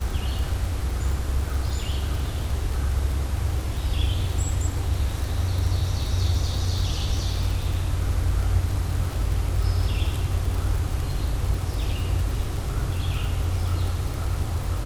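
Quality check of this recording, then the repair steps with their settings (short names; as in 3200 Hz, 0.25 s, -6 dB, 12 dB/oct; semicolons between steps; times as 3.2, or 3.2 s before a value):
crackle 60/s -28 dBFS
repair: de-click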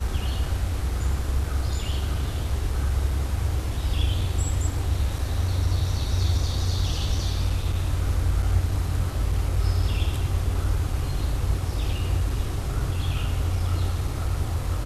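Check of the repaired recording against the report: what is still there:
none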